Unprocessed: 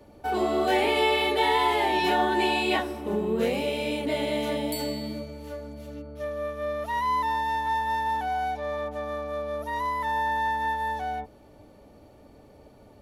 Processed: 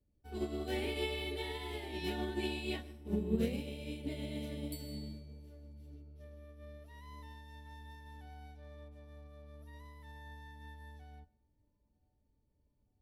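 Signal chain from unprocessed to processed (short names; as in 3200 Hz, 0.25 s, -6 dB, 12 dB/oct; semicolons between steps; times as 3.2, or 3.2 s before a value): passive tone stack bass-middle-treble 10-0-1; notch 6700 Hz, Q 11; band-limited delay 0.933 s, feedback 66%, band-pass 410 Hz, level -19 dB; on a send at -13 dB: reverb RT60 0.45 s, pre-delay 0.113 s; on the sum: upward expander 2.5:1, over -60 dBFS; gain +15.5 dB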